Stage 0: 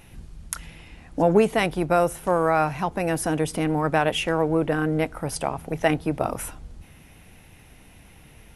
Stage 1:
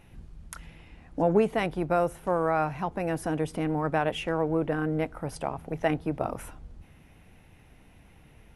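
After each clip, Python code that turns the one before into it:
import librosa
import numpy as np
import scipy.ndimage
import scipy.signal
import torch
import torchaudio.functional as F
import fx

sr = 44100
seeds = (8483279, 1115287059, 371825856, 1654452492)

y = fx.high_shelf(x, sr, hz=3300.0, db=-9.5)
y = y * 10.0 ** (-4.5 / 20.0)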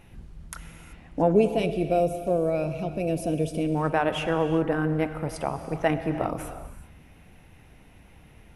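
y = fx.spec_box(x, sr, start_s=1.33, length_s=2.43, low_hz=720.0, high_hz=2200.0, gain_db=-18)
y = fx.rev_gated(y, sr, seeds[0], gate_ms=410, shape='flat', drr_db=9.0)
y = y * 10.0 ** (2.5 / 20.0)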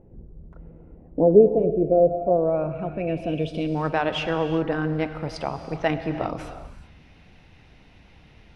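y = fx.filter_sweep_lowpass(x, sr, from_hz=470.0, to_hz=4600.0, start_s=1.91, end_s=3.72, q=2.4)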